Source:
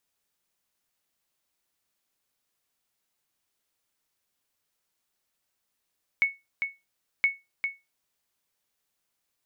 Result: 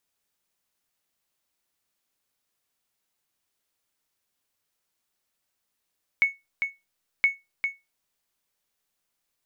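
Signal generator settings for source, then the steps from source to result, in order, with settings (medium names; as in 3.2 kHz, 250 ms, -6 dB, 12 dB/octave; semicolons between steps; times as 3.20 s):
sonar ping 2.21 kHz, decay 0.22 s, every 1.02 s, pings 2, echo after 0.40 s, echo -6.5 dB -14.5 dBFS
in parallel at -10 dB: hysteresis with a dead band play -39 dBFS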